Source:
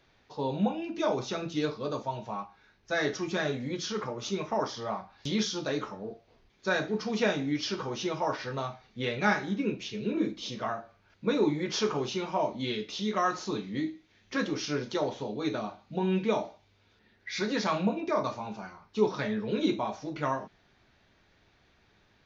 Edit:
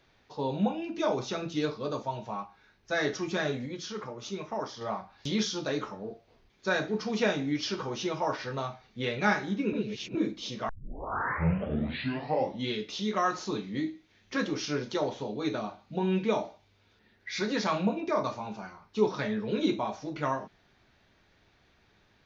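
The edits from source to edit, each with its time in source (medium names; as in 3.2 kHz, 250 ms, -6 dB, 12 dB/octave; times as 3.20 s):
3.66–4.81 s: gain -4.5 dB
9.73–10.15 s: reverse
10.69 s: tape start 2.00 s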